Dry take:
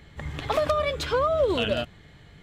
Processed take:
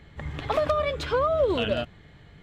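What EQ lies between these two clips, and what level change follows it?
high shelf 5000 Hz -9.5 dB; 0.0 dB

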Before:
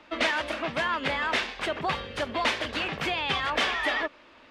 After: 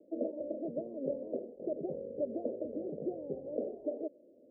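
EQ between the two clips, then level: HPF 290 Hz 12 dB/oct; steep low-pass 590 Hz 72 dB/oct; +1.0 dB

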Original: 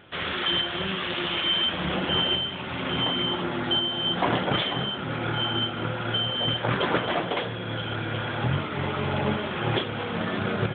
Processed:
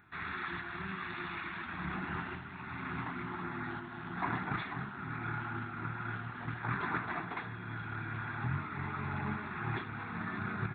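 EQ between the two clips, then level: high shelf 2400 Hz +8.5 dB; fixed phaser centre 1300 Hz, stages 4; -8.5 dB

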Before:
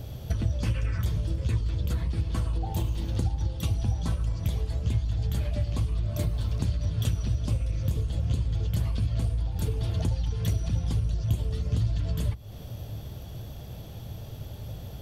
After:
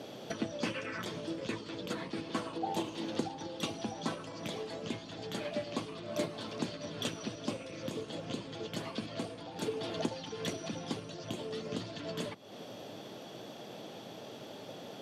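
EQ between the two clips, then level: HPF 240 Hz 24 dB/oct; air absorption 70 m; +4.0 dB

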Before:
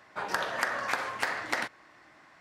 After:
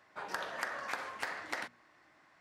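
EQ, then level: notches 60/120/180/240 Hz; -8.0 dB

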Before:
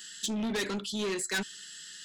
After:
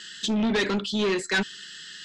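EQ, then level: LPF 4400 Hz 12 dB/oct; +8.0 dB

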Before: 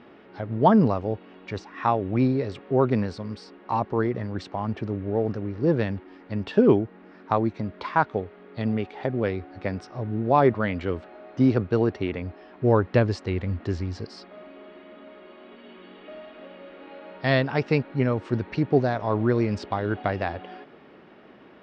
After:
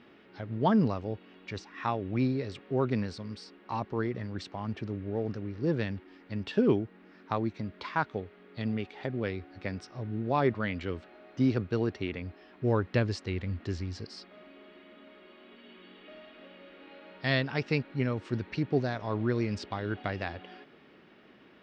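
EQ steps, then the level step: low shelf 300 Hz -6 dB; bell 760 Hz -9 dB 2.3 oct; 0.0 dB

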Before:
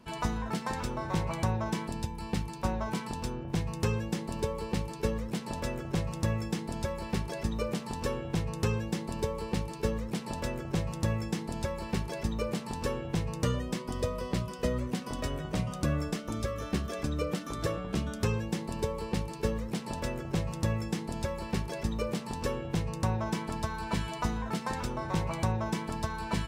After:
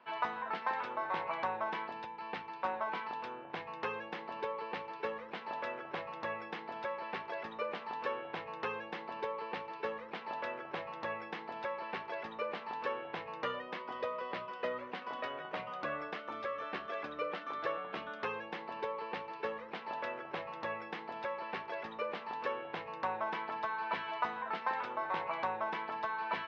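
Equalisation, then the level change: BPF 800–3000 Hz; air absorption 260 m; +4.5 dB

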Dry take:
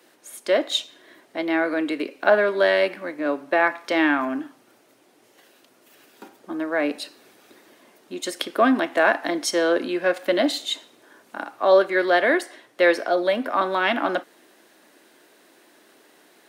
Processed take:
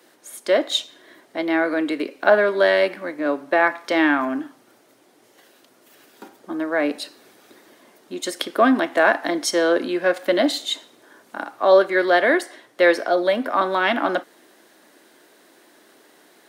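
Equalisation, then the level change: bell 2600 Hz -3.5 dB 0.3 oct; +2.0 dB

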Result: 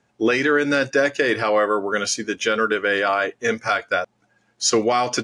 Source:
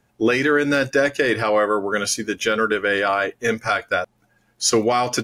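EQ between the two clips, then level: HPF 160 Hz 6 dB/oct; LPF 8200 Hz 24 dB/oct; 0.0 dB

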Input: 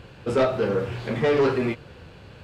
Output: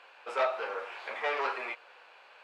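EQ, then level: HPF 790 Hz 24 dB/oct; tilt -3.5 dB/oct; bell 2400 Hz +5 dB 0.31 oct; -1.0 dB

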